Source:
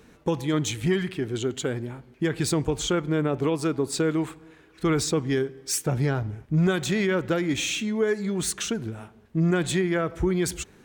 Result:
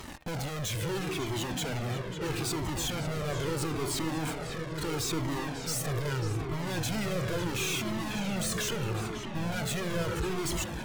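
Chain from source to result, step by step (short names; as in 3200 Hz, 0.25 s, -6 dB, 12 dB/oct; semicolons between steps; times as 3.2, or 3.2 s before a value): 0.75–2.5 HPF 100 Hz 12 dB/oct; in parallel at -8 dB: fuzz box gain 52 dB, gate -51 dBFS; on the sum: de-hum 308.2 Hz, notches 13; soft clip -24 dBFS, distortion -11 dB; on a send: darkening echo 0.548 s, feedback 79%, low-pass 3600 Hz, level -7 dB; on the sum: cascading flanger falling 0.76 Hz; gain -3.5 dB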